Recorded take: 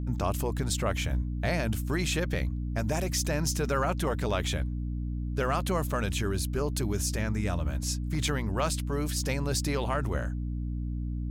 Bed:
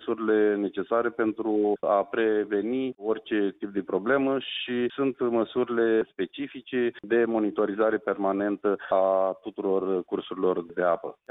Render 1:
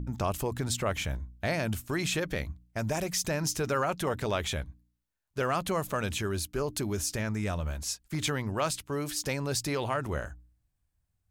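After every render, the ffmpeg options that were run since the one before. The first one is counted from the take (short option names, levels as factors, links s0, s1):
-af "bandreject=f=60:t=h:w=4,bandreject=f=120:t=h:w=4,bandreject=f=180:t=h:w=4,bandreject=f=240:t=h:w=4,bandreject=f=300:t=h:w=4"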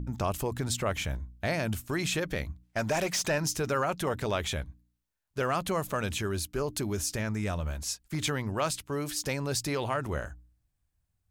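-filter_complex "[0:a]asettb=1/sr,asplit=3[s0][s1][s2];[s0]atrim=end=2.634[s3];[s1]atrim=start=2.63:end=3.38,asetpts=PTS-STARTPTS,afade=t=in:d=0.004:c=qsin,afade=t=out:st=0.746:d=0.004:c=qsin,asplit=2[s4][s5];[s5]highpass=f=720:p=1,volume=5.62,asoftclip=type=tanh:threshold=0.126[s6];[s4][s6]amix=inputs=2:normalize=0,lowpass=f=4000:p=1,volume=0.501[s7];[s2]atrim=start=3.376[s8];[s3][s7]acrossfade=d=0.004:c1=hsin:c2=qsin[s9];[s9][s8]acrossfade=d=0.004:c1=qsin:c2=hsin"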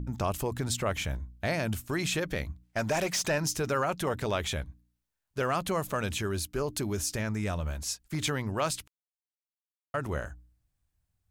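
-filter_complex "[0:a]asplit=3[s0][s1][s2];[s0]atrim=end=8.88,asetpts=PTS-STARTPTS,afade=t=out:st=8.876:d=0.004:c=hsin[s3];[s1]atrim=start=8.88:end=9.94,asetpts=PTS-STARTPTS,volume=0[s4];[s2]atrim=start=9.94,asetpts=PTS-STARTPTS,afade=t=in:d=0.004:c=hsin[s5];[s3][s4][s5]concat=n=3:v=0:a=1"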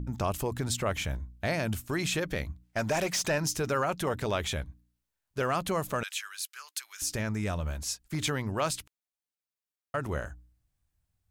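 -filter_complex "[0:a]asettb=1/sr,asplit=3[s0][s1][s2];[s0]atrim=end=6.034[s3];[s1]atrim=start=6.03:end=7.02,asetpts=PTS-STARTPTS,afade=t=in:d=0.004:c=qsin,afade=t=out:st=0.986:d=0.004:c=qsin,highpass=f=1400:w=0.5412,highpass=f=1400:w=1.3066[s4];[s2]atrim=start=7.016[s5];[s3][s4]acrossfade=d=0.004:c1=hsin:c2=qsin[s6];[s6][s5]acrossfade=d=0.004:c1=qsin:c2=hsin"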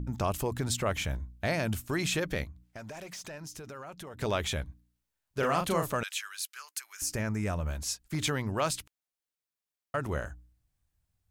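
-filter_complex "[0:a]asettb=1/sr,asplit=3[s0][s1][s2];[s0]atrim=end=2.444[s3];[s1]atrim=start=2.44:end=4.2,asetpts=PTS-STARTPTS,afade=t=in:d=0.004:c=qsin,afade=t=out:st=1.756:d=0.004:c=qsin,acompressor=threshold=0.00708:ratio=4:attack=3.2:release=140:knee=1:detection=peak[s4];[s2]atrim=start=4.196[s5];[s3][s4]acrossfade=d=0.004:c1=hsin:c2=qsin[s6];[s6][s5]acrossfade=d=0.004:c1=qsin:c2=hsin,asettb=1/sr,asplit=3[s7][s8][s9];[s7]atrim=end=5.394[s10];[s8]atrim=start=5.39:end=5.91,asetpts=PTS-STARTPTS,afade=t=in:d=0.004:c=qsin,afade=t=out:st=0.516:d=0.004:c=qsin,asplit=2[s11][s12];[s12]adelay=36,volume=0.596[s13];[s11][s13]amix=inputs=2:normalize=0,atrim=end_sample=22932[s14];[s9]atrim=start=5.906[s15];[s10][s14]acrossfade=d=0.004:c1=hsin:c2=qsin[s16];[s16][s15]acrossfade=d=0.004:c1=qsin:c2=hsin,asettb=1/sr,asplit=3[s17][s18][s19];[s17]atrim=end=6.654[s20];[s18]atrim=start=6.65:end=7.69,asetpts=PTS-STARTPTS,afade=t=in:d=0.004:c=qsin,afade=t=out:st=1.036:d=0.004:c=qsin,equalizer=f=3600:w=2.5:g=-9.5[s21];[s19]atrim=start=7.686[s22];[s20][s21]acrossfade=d=0.004:c1=hsin:c2=qsin[s23];[s23][s22]acrossfade=d=0.004:c1=qsin:c2=hsin"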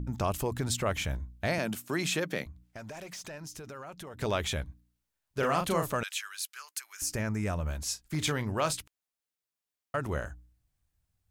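-filter_complex "[0:a]asettb=1/sr,asplit=3[s0][s1][s2];[s0]atrim=end=1.584[s3];[s1]atrim=start=1.58:end=2.46,asetpts=PTS-STARTPTS,afade=t=in:d=0.004:c=qsin,afade=t=out:st=0.876:d=0.004:c=qsin,highpass=f=150:w=0.5412,highpass=f=150:w=1.3066[s4];[s2]atrim=start=2.456[s5];[s3][s4]acrossfade=d=0.004:c1=hsin:c2=qsin[s6];[s6][s5]acrossfade=d=0.004:c1=qsin:c2=hsin,asettb=1/sr,asplit=3[s7][s8][s9];[s7]atrim=end=7.904[s10];[s8]atrim=start=7.9:end=8.77,asetpts=PTS-STARTPTS,afade=t=in:d=0.004:c=qsin,afade=t=out:st=0.866:d=0.004:c=qsin,asplit=2[s11][s12];[s12]adelay=33,volume=0.211[s13];[s11][s13]amix=inputs=2:normalize=0,atrim=end_sample=38367[s14];[s9]atrim=start=8.766[s15];[s10][s14]acrossfade=d=0.004:c1=hsin:c2=qsin[s16];[s16][s15]acrossfade=d=0.004:c1=qsin:c2=hsin"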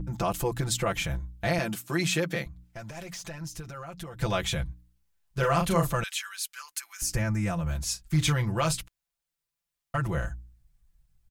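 -af "aecho=1:1:5.9:0.97,asubboost=boost=4:cutoff=130"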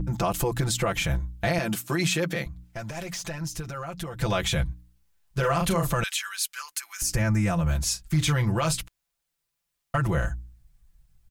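-af "acontrast=39,alimiter=limit=0.168:level=0:latency=1:release=102"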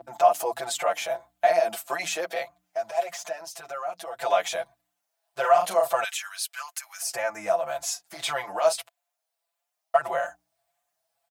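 -filter_complex "[0:a]highpass=f=680:t=q:w=7,asplit=2[s0][s1];[s1]adelay=5.6,afreqshift=1.7[s2];[s0][s2]amix=inputs=2:normalize=1"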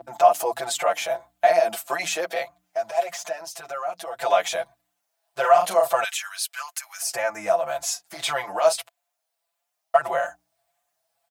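-af "volume=1.41"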